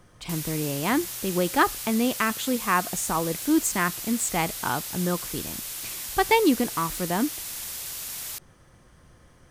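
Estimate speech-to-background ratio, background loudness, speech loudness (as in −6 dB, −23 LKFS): 6.5 dB, −32.5 LKFS, −26.0 LKFS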